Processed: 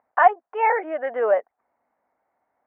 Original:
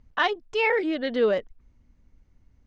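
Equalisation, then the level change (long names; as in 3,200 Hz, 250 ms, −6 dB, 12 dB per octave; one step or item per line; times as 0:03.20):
high-pass with resonance 720 Hz, resonance Q 4
inverse Chebyshev low-pass filter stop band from 3,800 Hz, stop band 40 dB
+2.0 dB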